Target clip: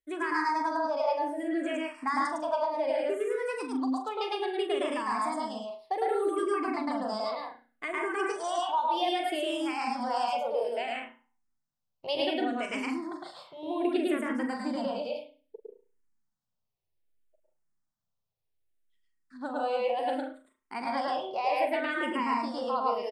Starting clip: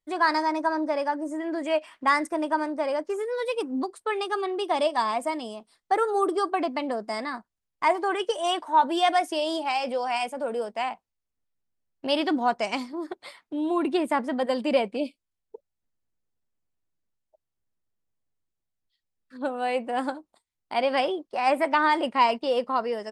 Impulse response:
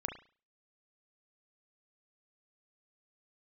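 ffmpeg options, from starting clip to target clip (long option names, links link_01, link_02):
-filter_complex "[0:a]acompressor=threshold=-23dB:ratio=6,asplit=2[link_01][link_02];[link_02]adelay=42,volume=-10.5dB[link_03];[link_01][link_03]amix=inputs=2:normalize=0,asplit=2[link_04][link_05];[1:a]atrim=start_sample=2205,adelay=107[link_06];[link_05][link_06]afir=irnorm=-1:irlink=0,volume=1dB[link_07];[link_04][link_07]amix=inputs=2:normalize=0,asplit=2[link_08][link_09];[link_09]afreqshift=-0.64[link_10];[link_08][link_10]amix=inputs=2:normalize=1,volume=-3dB"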